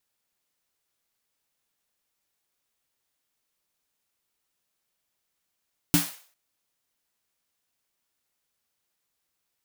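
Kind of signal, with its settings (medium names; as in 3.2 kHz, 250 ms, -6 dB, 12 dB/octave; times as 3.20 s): snare drum length 0.40 s, tones 170 Hz, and 290 Hz, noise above 520 Hz, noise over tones -4 dB, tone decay 0.20 s, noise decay 0.46 s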